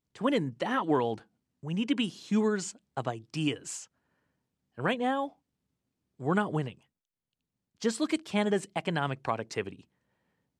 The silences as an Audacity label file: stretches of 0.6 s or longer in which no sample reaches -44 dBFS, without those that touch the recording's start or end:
3.840000	4.780000	silence
5.290000	6.200000	silence
6.720000	7.820000	silence